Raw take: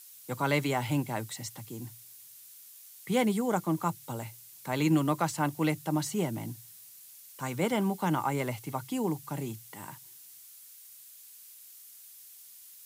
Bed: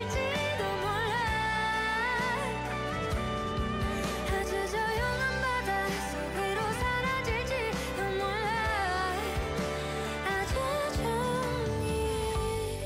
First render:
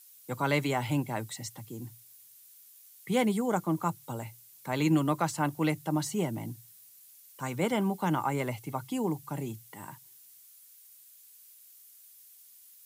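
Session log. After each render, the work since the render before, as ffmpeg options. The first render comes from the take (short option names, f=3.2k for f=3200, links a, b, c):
-af "afftdn=nr=6:nf=-52"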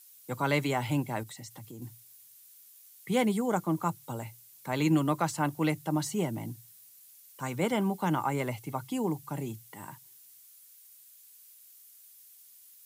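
-filter_complex "[0:a]asettb=1/sr,asplit=3[a][b][c];[a]atrim=end=1.234[d];[b]atrim=start=1.23:end=1.82,asetpts=PTS-STARTPTS,afade=t=in:d=0.004:c=qsin,afade=t=out:st=0.586:d=0.004:c=qsin,acompressor=threshold=-41dB:ratio=6:attack=3.2:release=140:knee=1:detection=peak[e];[c]atrim=start=1.816[f];[d][e]acrossfade=d=0.004:c1=hsin:c2=qsin[g];[g][f]acrossfade=d=0.004:c1=qsin:c2=hsin"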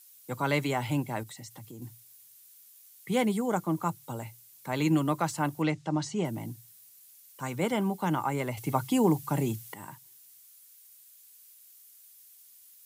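-filter_complex "[0:a]asettb=1/sr,asplit=3[a][b][c];[a]atrim=end=5.624[d];[b]atrim=start=5.62:end=6.25,asetpts=PTS-STARTPTS,afade=t=in:d=0.004:c=qsin,afade=t=out:st=0.626:d=0.004:c=qsin,lowpass=f=7k:w=0.5412,lowpass=f=7k:w=1.3066[e];[c]atrim=start=6.246[f];[d][e]acrossfade=d=0.004:c1=hsin:c2=qsin[g];[g][f]acrossfade=d=0.004:c1=qsin:c2=hsin,asettb=1/sr,asplit=3[h][i][j];[h]atrim=end=8.574[k];[i]atrim=start=8.57:end=9.74,asetpts=PTS-STARTPTS,afade=t=in:d=0.004:c=qsin,afade=t=out:st=1.166:d=0.004:c=qsin,acontrast=83[l];[j]atrim=start=9.736[m];[k][l]acrossfade=d=0.004:c1=hsin:c2=qsin[n];[n][m]acrossfade=d=0.004:c1=qsin:c2=hsin"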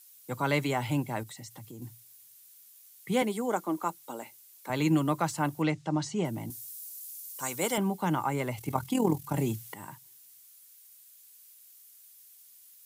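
-filter_complex "[0:a]asettb=1/sr,asplit=3[a][b][c];[a]atrim=end=3.224[d];[b]atrim=start=3.22:end=4.7,asetpts=PTS-STARTPTS,afade=t=in:d=0.004:c=qsin,afade=t=out:st=1.476:d=0.004:c=qsin,highpass=f=240:w=0.5412,highpass=f=240:w=1.3066[e];[c]atrim=start=4.696[f];[d][e]acrossfade=d=0.004:c1=hsin:c2=qsin[g];[g][f]acrossfade=d=0.004:c1=qsin:c2=hsin,asettb=1/sr,asplit=3[h][i][j];[h]atrim=end=6.504[k];[i]atrim=start=6.5:end=7.78,asetpts=PTS-STARTPTS,afade=t=in:d=0.004:c=qsin,afade=t=out:st=1.276:d=0.004:c=qsin,bass=f=250:g=-10,treble=f=4k:g=12[l];[j]atrim=start=7.776[m];[k][l]acrossfade=d=0.004:c1=hsin:c2=qsin[n];[n][m]acrossfade=d=0.004:c1=qsin:c2=hsin,asplit=3[o][p][q];[o]afade=t=out:st=8.56:d=0.02[r];[p]tremolo=f=41:d=0.621,afade=t=in:st=8.56:d=0.02,afade=t=out:st=9.35:d=0.02[s];[q]afade=t=in:st=9.35:d=0.02[t];[r][s][t]amix=inputs=3:normalize=0"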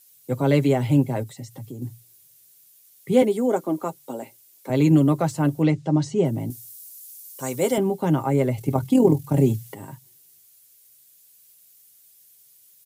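-af "lowshelf=f=730:t=q:w=1.5:g=8,aecho=1:1:7.5:0.48"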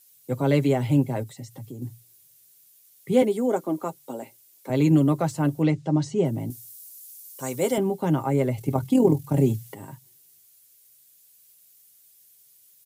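-af "volume=-2dB"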